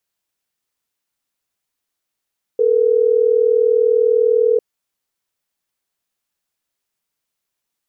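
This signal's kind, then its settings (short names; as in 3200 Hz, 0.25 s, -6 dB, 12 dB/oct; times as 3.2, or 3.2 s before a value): call progress tone ringback tone, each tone -14 dBFS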